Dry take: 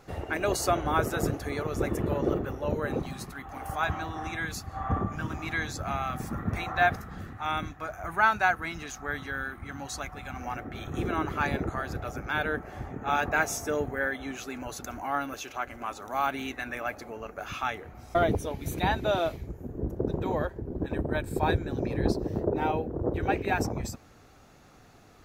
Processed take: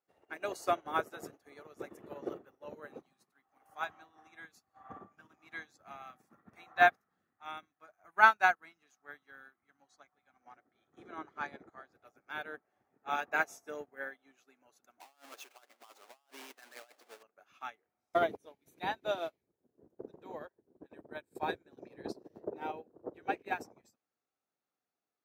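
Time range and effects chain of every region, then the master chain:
9.82–11.93 air absorption 52 m + notch 2700 Hz, Q 7.3
15–17.23 half-waves squared off + HPF 420 Hz + negative-ratio compressor -35 dBFS
whole clip: Bessel high-pass 320 Hz, order 2; upward expander 2.5:1, over -44 dBFS; gain +2.5 dB

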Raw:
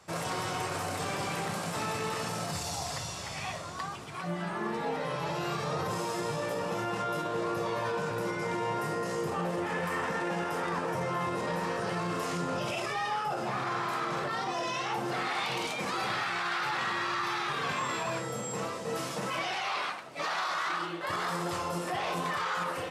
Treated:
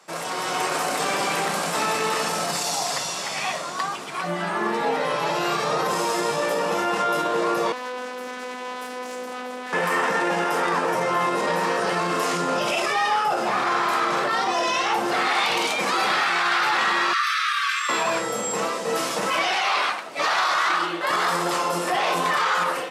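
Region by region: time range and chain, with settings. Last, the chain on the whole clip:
7.72–9.73 tube stage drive 37 dB, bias 0.75 + robotiser 251 Hz + Doppler distortion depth 0.52 ms
17.13–17.89 brick-wall FIR high-pass 1100 Hz + notch 7100 Hz, Q 11
whole clip: HPF 170 Hz 24 dB/oct; low shelf 230 Hz -9 dB; AGC gain up to 6 dB; gain +5 dB

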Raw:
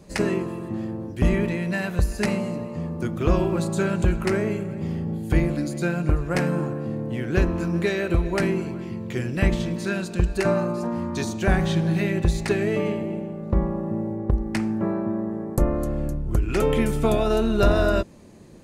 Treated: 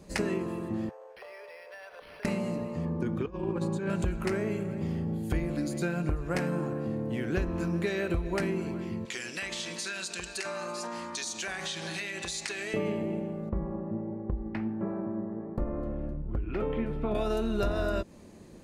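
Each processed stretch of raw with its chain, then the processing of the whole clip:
0.89–2.25 steep high-pass 450 Hz 72 dB/oct + compressor 4:1, threshold -42 dBFS + decimation joined by straight lines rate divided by 6×
2.85–3.9 LPF 2200 Hz 6 dB/oct + negative-ratio compressor -25 dBFS, ratio -0.5 + notch comb 670 Hz
9.05–12.74 weighting filter ITU-R 468 + compressor, threshold -29 dBFS
13.49–17.15 air absorption 390 m + flange 1.4 Hz, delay 3.4 ms, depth 7.9 ms, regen +69%
whole clip: bell 130 Hz -7 dB 0.27 oct; compressor 4:1, threshold -24 dBFS; gain -2.5 dB

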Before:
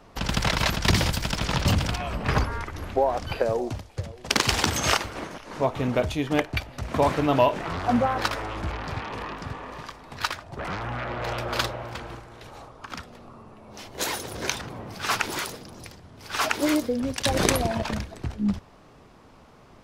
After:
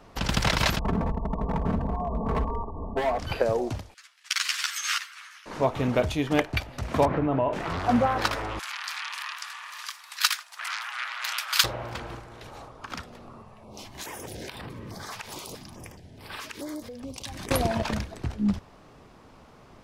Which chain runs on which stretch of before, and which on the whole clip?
0.79–3.19 brick-wall FIR low-pass 1200 Hz + overloaded stage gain 23 dB + comb 4.5 ms, depth 66%
3.94–5.46 steep high-pass 1300 Hz + ensemble effect
7.05–7.53 Chebyshev low-pass 2100 Hz + tilt shelf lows +6 dB, about 1300 Hz + compressor 5:1, threshold -21 dBFS
8.59–11.64 HPF 1100 Hz 24 dB/oct + tilt +4 dB/oct
13.42–17.51 compressor, threshold -33 dBFS + notch 1400 Hz, Q 8.6 + stepped notch 4.7 Hz 310–6400 Hz
whole clip: dry

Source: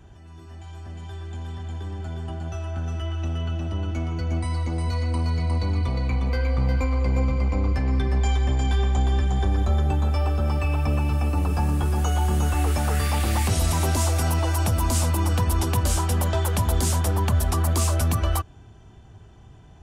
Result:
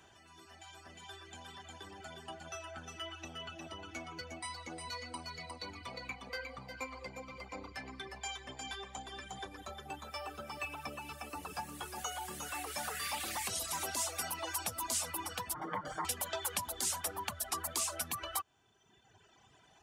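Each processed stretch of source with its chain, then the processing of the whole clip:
15.54–16.05 minimum comb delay 6.5 ms + polynomial smoothing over 41 samples
whole clip: compressor, threshold -25 dBFS; HPF 1400 Hz 6 dB/oct; reverb removal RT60 1.6 s; gain +2 dB

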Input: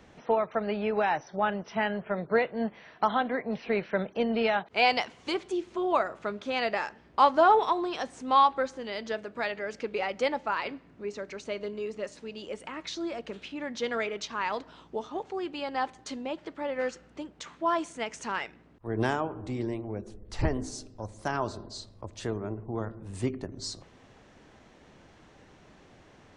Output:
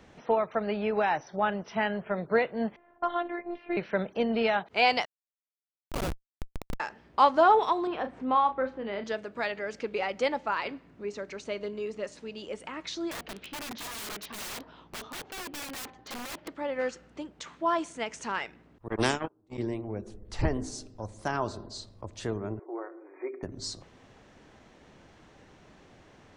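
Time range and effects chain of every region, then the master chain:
2.76–3.77 low-pass opened by the level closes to 760 Hz, open at -22.5 dBFS + robotiser 347 Hz + air absorption 200 m
5.05–6.8 transient shaper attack -7 dB, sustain +12 dB + Schmitt trigger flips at -21 dBFS
7.87–9.04 air absorption 450 m + doubler 35 ms -9 dB + three-band squash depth 40%
13.11–16.48 Gaussian blur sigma 1.7 samples + wrapped overs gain 34 dB
18.88–19.58 bell 320 Hz +8 dB 1.5 oct + gate -24 dBFS, range -50 dB + spectral compressor 2:1
22.59–23.43 compressor 1.5:1, threshold -34 dBFS + brick-wall FIR band-pass 280–2500 Hz + comb 5.4 ms, depth 45%
whole clip: dry

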